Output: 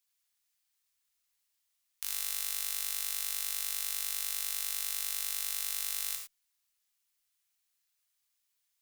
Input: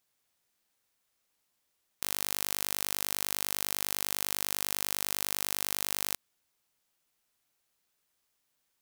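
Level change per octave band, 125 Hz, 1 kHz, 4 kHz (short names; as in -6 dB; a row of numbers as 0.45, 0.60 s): under -10 dB, -9.5 dB, -2.5 dB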